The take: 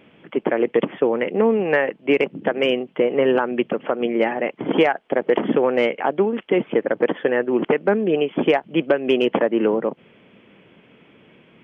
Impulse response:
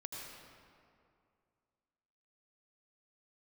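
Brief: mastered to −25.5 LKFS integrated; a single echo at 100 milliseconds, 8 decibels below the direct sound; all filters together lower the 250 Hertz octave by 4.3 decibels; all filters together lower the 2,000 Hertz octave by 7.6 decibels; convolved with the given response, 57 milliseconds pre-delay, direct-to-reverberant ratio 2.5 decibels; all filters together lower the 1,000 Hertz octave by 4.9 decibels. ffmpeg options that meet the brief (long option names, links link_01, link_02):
-filter_complex "[0:a]equalizer=frequency=250:width_type=o:gain=-5.5,equalizer=frequency=1000:width_type=o:gain=-5,equalizer=frequency=2000:width_type=o:gain=-8,aecho=1:1:100:0.398,asplit=2[link_01][link_02];[1:a]atrim=start_sample=2205,adelay=57[link_03];[link_02][link_03]afir=irnorm=-1:irlink=0,volume=-1dB[link_04];[link_01][link_04]amix=inputs=2:normalize=0,volume=-4.5dB"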